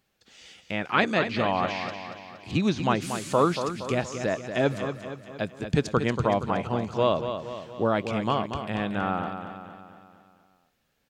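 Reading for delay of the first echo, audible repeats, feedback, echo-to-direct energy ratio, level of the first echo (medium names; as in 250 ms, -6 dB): 234 ms, 5, 52%, -7.0 dB, -8.5 dB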